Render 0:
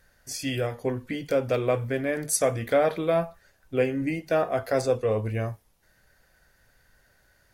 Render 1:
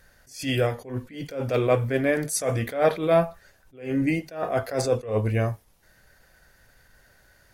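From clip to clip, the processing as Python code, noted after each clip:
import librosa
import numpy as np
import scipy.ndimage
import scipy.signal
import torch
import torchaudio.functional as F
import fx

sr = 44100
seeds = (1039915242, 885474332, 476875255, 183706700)

y = fx.attack_slew(x, sr, db_per_s=140.0)
y = y * librosa.db_to_amplitude(5.0)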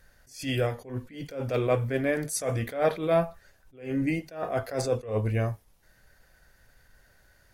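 y = fx.low_shelf(x, sr, hz=68.0, db=5.5)
y = y * librosa.db_to_amplitude(-4.0)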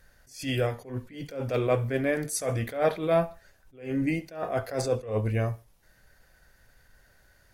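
y = fx.echo_feedback(x, sr, ms=69, feedback_pct=36, wet_db=-23.0)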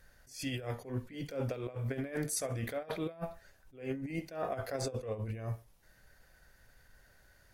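y = fx.over_compress(x, sr, threshold_db=-30.0, ratio=-0.5)
y = y * librosa.db_to_amplitude(-6.0)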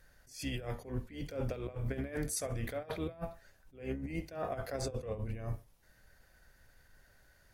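y = fx.octave_divider(x, sr, octaves=2, level_db=-3.0)
y = y * librosa.db_to_amplitude(-1.5)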